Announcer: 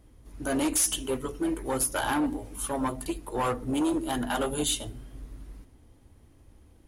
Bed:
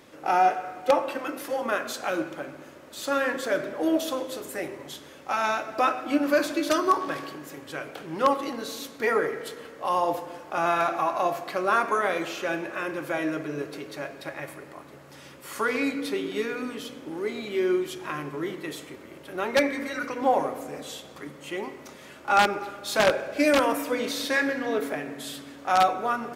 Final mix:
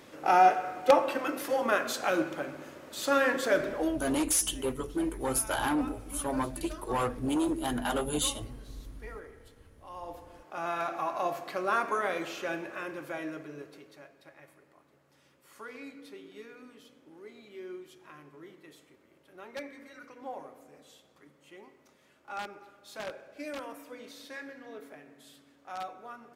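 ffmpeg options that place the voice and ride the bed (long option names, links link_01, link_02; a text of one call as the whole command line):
ffmpeg -i stem1.wav -i stem2.wav -filter_complex "[0:a]adelay=3550,volume=-2dB[link_01];[1:a]volume=16dB,afade=type=out:start_time=3.75:duration=0.25:silence=0.0841395,afade=type=in:start_time=9.88:duration=1.45:silence=0.158489,afade=type=out:start_time=12.45:duration=1.65:silence=0.223872[link_02];[link_01][link_02]amix=inputs=2:normalize=0" out.wav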